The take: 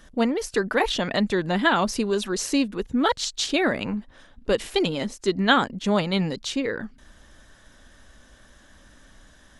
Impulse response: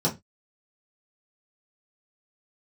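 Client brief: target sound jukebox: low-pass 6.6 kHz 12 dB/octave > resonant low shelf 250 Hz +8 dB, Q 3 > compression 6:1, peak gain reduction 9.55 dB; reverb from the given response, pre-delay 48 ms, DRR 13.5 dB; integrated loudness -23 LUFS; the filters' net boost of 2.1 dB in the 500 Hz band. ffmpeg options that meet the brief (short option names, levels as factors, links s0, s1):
-filter_complex "[0:a]equalizer=f=500:t=o:g=6.5,asplit=2[s0][s1];[1:a]atrim=start_sample=2205,adelay=48[s2];[s1][s2]afir=irnorm=-1:irlink=0,volume=0.0596[s3];[s0][s3]amix=inputs=2:normalize=0,lowpass=6600,lowshelf=f=250:t=q:w=3:g=8,acompressor=threshold=0.178:ratio=6,volume=0.794"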